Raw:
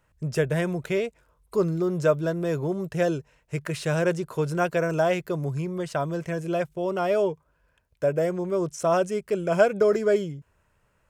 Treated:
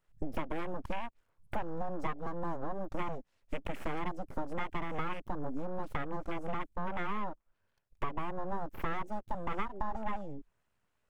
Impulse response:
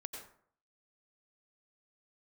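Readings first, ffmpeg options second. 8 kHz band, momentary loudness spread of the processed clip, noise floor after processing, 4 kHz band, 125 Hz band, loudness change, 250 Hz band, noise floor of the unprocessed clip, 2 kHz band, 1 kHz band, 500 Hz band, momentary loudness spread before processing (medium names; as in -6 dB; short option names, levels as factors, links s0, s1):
under -20 dB, 4 LU, -78 dBFS, -11.5 dB, -15.5 dB, -14.0 dB, -12.5 dB, -68 dBFS, -11.0 dB, -5.5 dB, -18.5 dB, 8 LU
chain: -af "aeval=exprs='abs(val(0))':c=same,acompressor=threshold=0.0141:ratio=6,afwtdn=0.00355,volume=2"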